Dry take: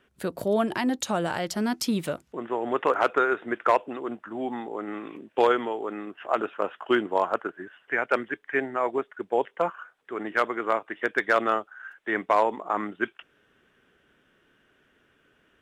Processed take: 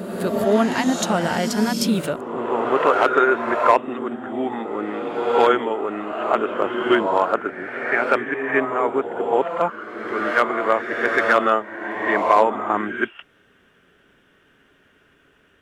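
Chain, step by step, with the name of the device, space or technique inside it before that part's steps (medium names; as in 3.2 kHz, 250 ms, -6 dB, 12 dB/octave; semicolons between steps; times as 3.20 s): reverse reverb (reverse; reverberation RT60 1.8 s, pre-delay 4 ms, DRR 3 dB; reverse); trim +5 dB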